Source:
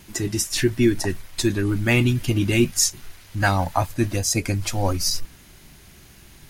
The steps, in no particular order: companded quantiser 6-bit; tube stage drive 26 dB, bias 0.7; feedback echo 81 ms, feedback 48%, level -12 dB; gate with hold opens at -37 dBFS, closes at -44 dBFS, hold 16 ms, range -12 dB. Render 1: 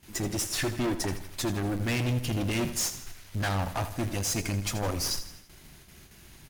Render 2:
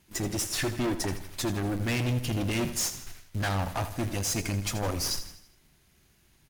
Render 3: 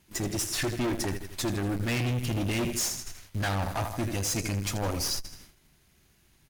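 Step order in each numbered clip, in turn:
companded quantiser > gate with hold > tube stage > feedback echo; companded quantiser > tube stage > gate with hold > feedback echo; feedback echo > companded quantiser > tube stage > gate with hold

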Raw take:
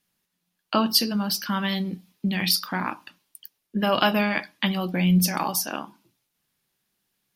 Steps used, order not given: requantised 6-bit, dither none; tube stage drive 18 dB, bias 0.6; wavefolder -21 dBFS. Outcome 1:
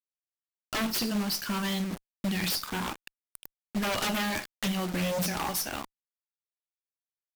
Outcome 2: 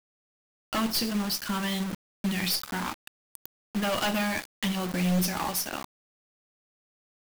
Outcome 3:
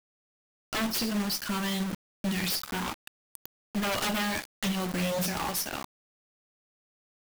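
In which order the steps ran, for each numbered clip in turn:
wavefolder > requantised > tube stage; tube stage > wavefolder > requantised; wavefolder > tube stage > requantised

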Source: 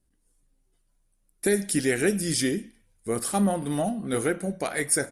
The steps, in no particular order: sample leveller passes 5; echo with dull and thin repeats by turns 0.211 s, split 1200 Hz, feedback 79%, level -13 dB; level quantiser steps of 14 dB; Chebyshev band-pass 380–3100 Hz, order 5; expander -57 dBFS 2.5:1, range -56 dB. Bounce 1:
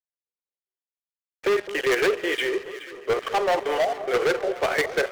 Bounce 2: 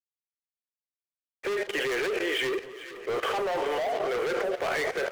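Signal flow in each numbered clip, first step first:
expander > Chebyshev band-pass > level quantiser > sample leveller > echo with dull and thin repeats by turns; Chebyshev band-pass > sample leveller > echo with dull and thin repeats by turns > level quantiser > expander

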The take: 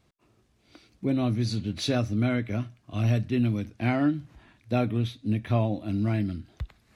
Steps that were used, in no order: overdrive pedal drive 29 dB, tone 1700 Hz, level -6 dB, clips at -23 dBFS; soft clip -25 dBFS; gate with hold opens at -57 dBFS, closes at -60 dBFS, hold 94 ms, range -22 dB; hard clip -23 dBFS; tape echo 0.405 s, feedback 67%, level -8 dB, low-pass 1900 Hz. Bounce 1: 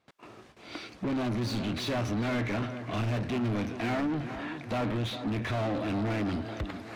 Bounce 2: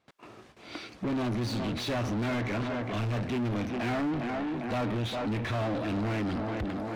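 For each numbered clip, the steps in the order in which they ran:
gate with hold > overdrive pedal > hard clip > soft clip > tape echo; gate with hold > tape echo > hard clip > overdrive pedal > soft clip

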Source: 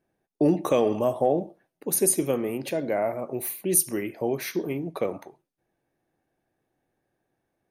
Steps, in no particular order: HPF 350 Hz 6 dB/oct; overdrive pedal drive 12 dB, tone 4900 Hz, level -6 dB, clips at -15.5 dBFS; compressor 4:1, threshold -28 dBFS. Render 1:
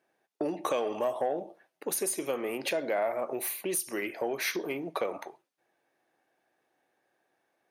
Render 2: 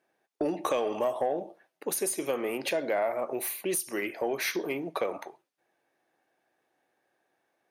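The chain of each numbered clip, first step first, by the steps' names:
compressor > overdrive pedal > HPF; HPF > compressor > overdrive pedal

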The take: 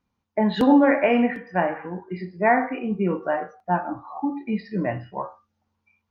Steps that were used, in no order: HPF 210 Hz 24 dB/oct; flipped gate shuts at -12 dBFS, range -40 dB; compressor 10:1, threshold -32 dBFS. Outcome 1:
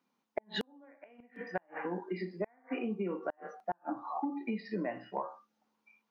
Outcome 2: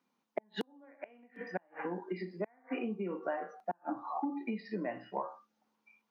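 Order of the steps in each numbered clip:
HPF > flipped gate > compressor; flipped gate > compressor > HPF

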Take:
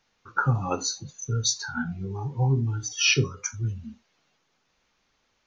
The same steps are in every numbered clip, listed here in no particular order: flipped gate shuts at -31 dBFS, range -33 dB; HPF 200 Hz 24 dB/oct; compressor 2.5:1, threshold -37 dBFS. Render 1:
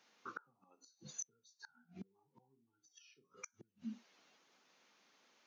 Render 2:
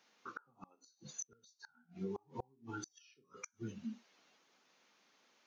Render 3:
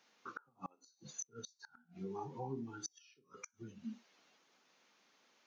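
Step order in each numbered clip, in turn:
compressor > flipped gate > HPF; HPF > compressor > flipped gate; compressor > HPF > flipped gate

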